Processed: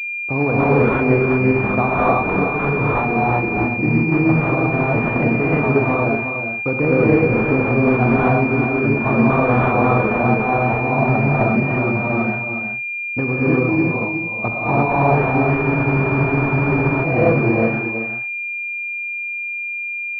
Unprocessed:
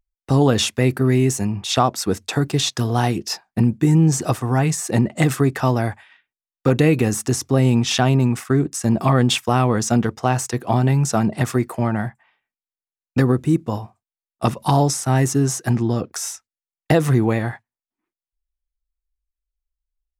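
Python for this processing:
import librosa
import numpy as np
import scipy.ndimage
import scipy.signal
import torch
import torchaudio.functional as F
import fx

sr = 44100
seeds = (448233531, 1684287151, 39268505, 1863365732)

p1 = fx.low_shelf(x, sr, hz=440.0, db=-8.0)
p2 = p1 + fx.echo_single(p1, sr, ms=365, db=-8.0, dry=0)
p3 = fx.rev_gated(p2, sr, seeds[0], gate_ms=370, shape='rising', drr_db=-7.0)
p4 = fx.spec_freeze(p3, sr, seeds[1], at_s=15.65, hold_s=1.39)
y = fx.pwm(p4, sr, carrier_hz=2400.0)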